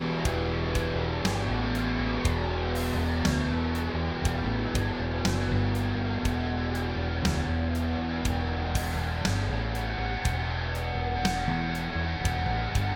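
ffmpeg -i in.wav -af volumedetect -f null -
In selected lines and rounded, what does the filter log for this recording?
mean_volume: -27.7 dB
max_volume: -9.3 dB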